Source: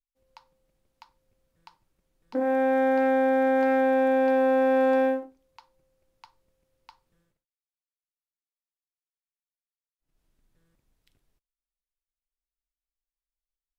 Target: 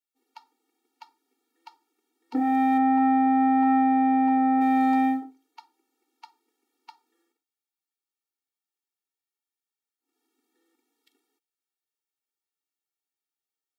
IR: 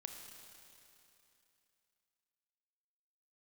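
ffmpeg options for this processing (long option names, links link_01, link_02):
-filter_complex "[0:a]asplit=3[link_01][link_02][link_03];[link_01]afade=type=out:start_time=2.77:duration=0.02[link_04];[link_02]lowpass=1800,afade=type=in:start_time=2.77:duration=0.02,afade=type=out:start_time=4.6:duration=0.02[link_05];[link_03]afade=type=in:start_time=4.6:duration=0.02[link_06];[link_04][link_05][link_06]amix=inputs=3:normalize=0,afftfilt=real='re*eq(mod(floor(b*sr/1024/240),2),1)':imag='im*eq(mod(floor(b*sr/1024/240),2),1)':win_size=1024:overlap=0.75,volume=6dB"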